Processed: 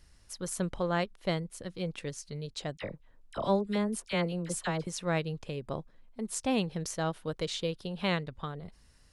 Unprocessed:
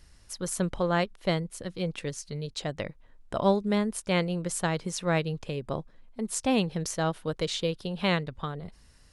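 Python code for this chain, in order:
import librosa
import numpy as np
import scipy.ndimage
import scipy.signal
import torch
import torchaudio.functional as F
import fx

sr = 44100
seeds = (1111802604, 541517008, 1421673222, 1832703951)

y = fx.dispersion(x, sr, late='lows', ms=46.0, hz=1200.0, at=(2.77, 4.87))
y = y * librosa.db_to_amplitude(-4.0)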